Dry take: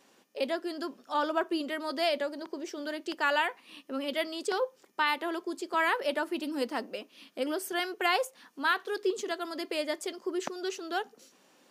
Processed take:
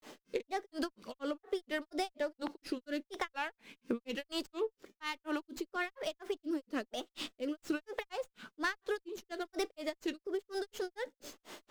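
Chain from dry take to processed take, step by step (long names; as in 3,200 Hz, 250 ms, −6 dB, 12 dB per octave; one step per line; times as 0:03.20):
rotating-speaker cabinet horn 1.1 Hz
downward compressor 16 to 1, threshold −47 dBFS, peak gain reduction 24.5 dB
granular cloud 193 ms, grains 4.2 per second, spray 17 ms, pitch spread up and down by 3 semitones
windowed peak hold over 3 samples
level +17 dB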